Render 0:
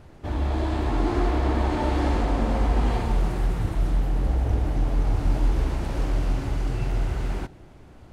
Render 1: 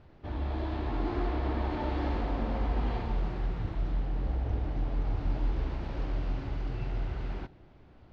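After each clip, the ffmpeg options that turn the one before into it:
ffmpeg -i in.wav -af "lowpass=frequency=4700:width=0.5412,lowpass=frequency=4700:width=1.3066,volume=-8dB" out.wav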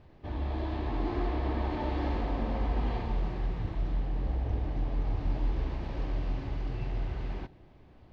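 ffmpeg -i in.wav -af "bandreject=frequency=1400:width=8.9" out.wav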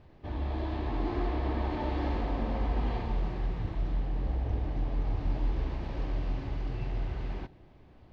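ffmpeg -i in.wav -af anull out.wav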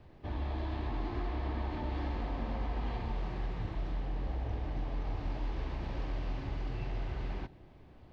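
ffmpeg -i in.wav -filter_complex "[0:a]acrossover=split=270|700[link_01][link_02][link_03];[link_01]acompressor=threshold=-33dB:ratio=4[link_04];[link_02]acompressor=threshold=-48dB:ratio=4[link_05];[link_03]acompressor=threshold=-44dB:ratio=4[link_06];[link_04][link_05][link_06]amix=inputs=3:normalize=0" out.wav

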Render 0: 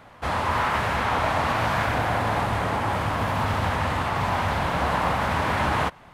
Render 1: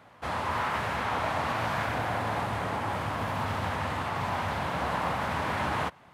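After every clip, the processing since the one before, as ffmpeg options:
ffmpeg -i in.wav -af "highpass=80,volume=-6dB" out.wav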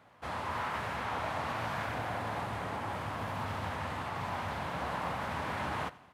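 ffmpeg -i in.wav -af "aecho=1:1:88|176|264|352:0.1|0.054|0.0292|0.0157,volume=-6dB" out.wav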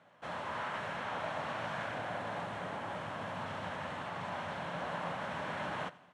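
ffmpeg -i in.wav -af "highpass=130,equalizer=frequency=170:width_type=q:width=4:gain=6,equalizer=frequency=590:width_type=q:width=4:gain=6,equalizer=frequency=1600:width_type=q:width=4:gain=4,equalizer=frequency=3100:width_type=q:width=4:gain=4,lowpass=frequency=9400:width=0.5412,lowpass=frequency=9400:width=1.3066,bandreject=frequency=4800:width=14,volume=-4.5dB" out.wav

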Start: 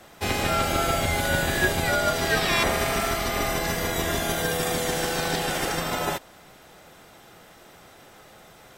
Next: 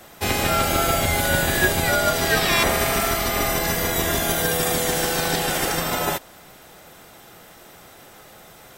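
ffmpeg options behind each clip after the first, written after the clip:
ffmpeg -i in.wav -af "highshelf=frequency=11000:gain=10.5,volume=3dB" out.wav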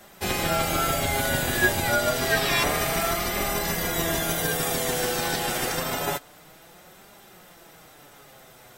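ffmpeg -i in.wav -af "flanger=delay=4.9:depth=3.8:regen=47:speed=0.28:shape=triangular" out.wav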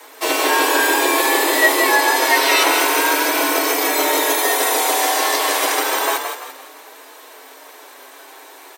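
ffmpeg -i in.wav -filter_complex "[0:a]acontrast=60,afreqshift=260,asplit=6[link_01][link_02][link_03][link_04][link_05][link_06];[link_02]adelay=170,afreqshift=38,volume=-6.5dB[link_07];[link_03]adelay=340,afreqshift=76,volume=-14.7dB[link_08];[link_04]adelay=510,afreqshift=114,volume=-22.9dB[link_09];[link_05]adelay=680,afreqshift=152,volume=-31dB[link_10];[link_06]adelay=850,afreqshift=190,volume=-39.2dB[link_11];[link_01][link_07][link_08][link_09][link_10][link_11]amix=inputs=6:normalize=0,volume=1.5dB" out.wav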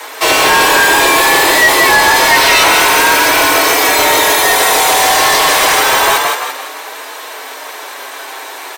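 ffmpeg -i in.wav -filter_complex "[0:a]asplit=2[link_01][link_02];[link_02]highpass=frequency=720:poles=1,volume=22dB,asoftclip=type=tanh:threshold=-1dB[link_03];[link_01][link_03]amix=inputs=2:normalize=0,lowpass=frequency=6300:poles=1,volume=-6dB" out.wav

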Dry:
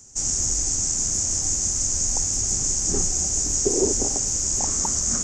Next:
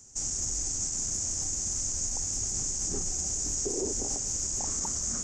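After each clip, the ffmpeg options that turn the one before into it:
ffmpeg -i in.wav -af "alimiter=limit=-17dB:level=0:latency=1:release=37,volume=-5dB" out.wav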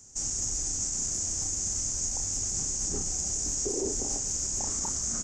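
ffmpeg -i in.wav -filter_complex "[0:a]asplit=2[link_01][link_02];[link_02]adelay=31,volume=-8dB[link_03];[link_01][link_03]amix=inputs=2:normalize=0" out.wav

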